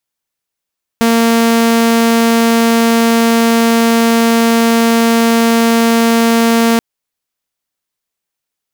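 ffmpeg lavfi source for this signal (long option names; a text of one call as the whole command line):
ffmpeg -f lavfi -i "aevalsrc='0.531*(2*mod(230*t,1)-1)':duration=5.78:sample_rate=44100" out.wav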